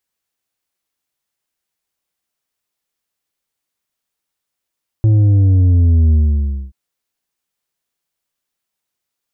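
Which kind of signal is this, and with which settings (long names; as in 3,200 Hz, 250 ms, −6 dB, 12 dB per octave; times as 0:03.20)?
bass drop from 110 Hz, over 1.68 s, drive 6 dB, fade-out 0.59 s, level −8.5 dB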